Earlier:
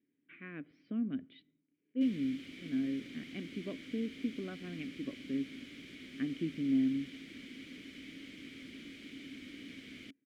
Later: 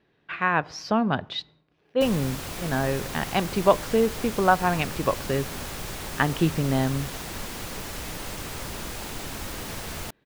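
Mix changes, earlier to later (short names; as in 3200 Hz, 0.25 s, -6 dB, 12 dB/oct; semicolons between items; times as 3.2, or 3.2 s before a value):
speech: remove tape spacing loss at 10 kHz 39 dB; master: remove vowel filter i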